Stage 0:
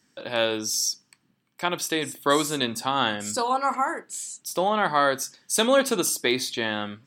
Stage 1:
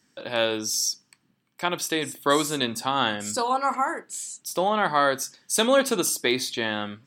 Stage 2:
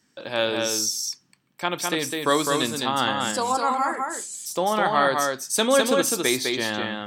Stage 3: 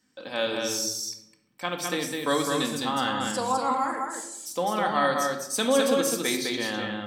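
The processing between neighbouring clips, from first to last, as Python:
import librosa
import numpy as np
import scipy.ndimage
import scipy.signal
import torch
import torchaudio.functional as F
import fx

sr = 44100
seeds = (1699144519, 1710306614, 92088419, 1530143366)

y1 = x
y2 = y1 + 10.0 ** (-3.5 / 20.0) * np.pad(y1, (int(206 * sr / 1000.0), 0))[:len(y1)]
y3 = fx.room_shoebox(y2, sr, seeds[0], volume_m3=2500.0, walls='furnished', distance_m=2.0)
y3 = y3 * librosa.db_to_amplitude(-5.5)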